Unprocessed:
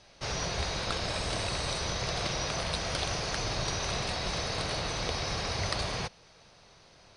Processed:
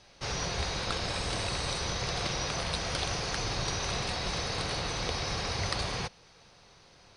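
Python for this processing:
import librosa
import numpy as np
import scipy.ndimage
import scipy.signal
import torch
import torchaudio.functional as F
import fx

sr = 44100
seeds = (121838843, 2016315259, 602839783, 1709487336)

y = fx.notch(x, sr, hz=630.0, q=12.0)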